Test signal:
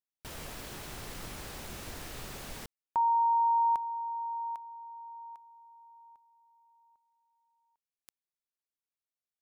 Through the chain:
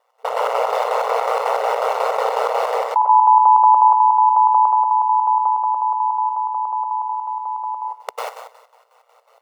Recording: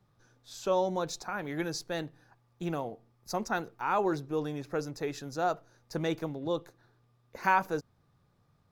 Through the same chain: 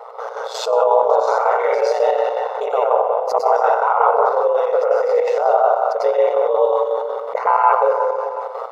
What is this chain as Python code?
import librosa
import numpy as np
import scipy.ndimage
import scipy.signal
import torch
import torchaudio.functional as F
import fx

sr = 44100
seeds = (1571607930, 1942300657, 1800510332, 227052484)

p1 = fx.rev_plate(x, sr, seeds[0], rt60_s=0.86, hf_ratio=1.0, predelay_ms=85, drr_db=-9.0)
p2 = fx.chopper(p1, sr, hz=5.5, depth_pct=65, duty_pct=60)
p3 = scipy.signal.savgol_filter(p2, 65, 4, mode='constant')
p4 = p3 * np.sin(2.0 * np.pi * 60.0 * np.arange(len(p3)) / sr)
p5 = fx.rider(p4, sr, range_db=3, speed_s=0.5)
p6 = p4 + (p5 * 10.0 ** (0.0 / 20.0))
p7 = fx.brickwall_highpass(p6, sr, low_hz=430.0)
p8 = fx.env_flatten(p7, sr, amount_pct=70)
y = p8 * 10.0 ** (1.5 / 20.0)